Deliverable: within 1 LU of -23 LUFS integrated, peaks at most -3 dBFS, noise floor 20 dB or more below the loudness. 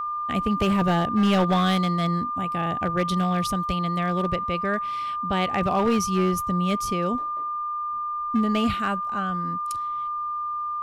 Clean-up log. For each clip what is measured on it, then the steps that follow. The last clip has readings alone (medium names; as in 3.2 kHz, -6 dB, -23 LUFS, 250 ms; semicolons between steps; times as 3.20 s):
clipped samples 1.2%; clipping level -15.5 dBFS; steady tone 1.2 kHz; tone level -26 dBFS; loudness -24.5 LUFS; peak level -15.5 dBFS; loudness target -23.0 LUFS
-> clip repair -15.5 dBFS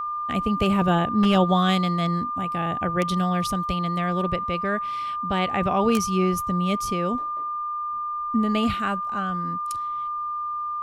clipped samples 0.0%; steady tone 1.2 kHz; tone level -26 dBFS
-> band-stop 1.2 kHz, Q 30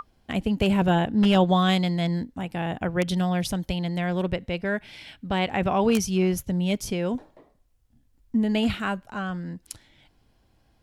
steady tone not found; loudness -25.0 LUFS; peak level -7.0 dBFS; loudness target -23.0 LUFS
-> trim +2 dB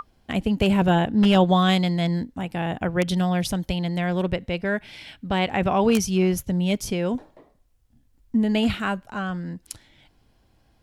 loudness -23.0 LUFS; peak level -5.0 dBFS; noise floor -62 dBFS